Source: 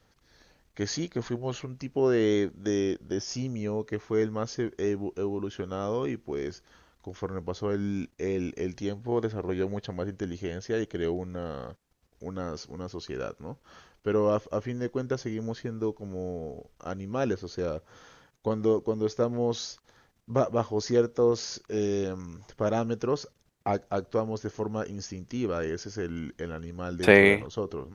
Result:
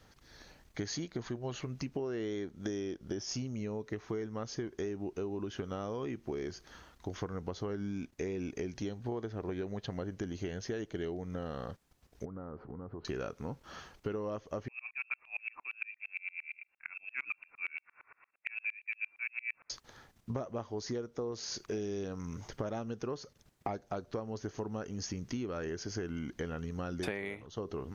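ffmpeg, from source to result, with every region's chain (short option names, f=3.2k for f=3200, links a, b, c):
-filter_complex "[0:a]asettb=1/sr,asplit=3[a][b][c];[a]atrim=end=12.254[d];[b]atrim=start=12.25:end=13.05,asetpts=PTS-STARTPTS,afade=t=in:d=0.004:c=qsin,afade=t=out:st=0.796:d=0.004:c=qsin,lowpass=f=1.4k:w=0.5412,lowpass=f=1.4k:w=1.3066,acompressor=threshold=-43dB:ratio=12:attack=3.2:release=140:knee=1:detection=peak[e];[c]atrim=start=13.046[f];[d][e]acrossfade=d=0.004:c1=hsin:c2=qsin[g];[g][f]acrossfade=d=0.004:c1=qsin:c2=hsin,asettb=1/sr,asplit=3[h][i][j];[h]atrim=end=14.684[k];[i]atrim=start=14.68:end=19.7,asetpts=PTS-STARTPTS,afade=t=in:d=0.004:c=qsin,afade=t=out:st=5.016:d=0.004:c=qsin,highpass=f=240:p=1,lowpass=f=2.4k:t=q:w=0.5098,lowpass=f=2.4k:t=q:w=0.6013,lowpass=f=2.4k:t=q:w=0.9,lowpass=f=2.4k:t=q:w=2.563,afreqshift=-2800,aeval=exprs='val(0)*pow(10,-35*if(lt(mod(-8.7*n/s,1),2*abs(-8.7)/1000),1-mod(-8.7*n/s,1)/(2*abs(-8.7)/1000),(mod(-8.7*n/s,1)-2*abs(-8.7)/1000)/(1-2*abs(-8.7)/1000))/20)':c=same[l];[j]atrim=start=19.696[m];[k][l]acrossfade=d=0.004:c1=hsin:c2=qsin[n];[n][m]acrossfade=d=0.004:c1=qsin:c2=hsin,equalizer=f=490:t=o:w=0.24:g=-3,acompressor=threshold=-38dB:ratio=16,volume=4dB"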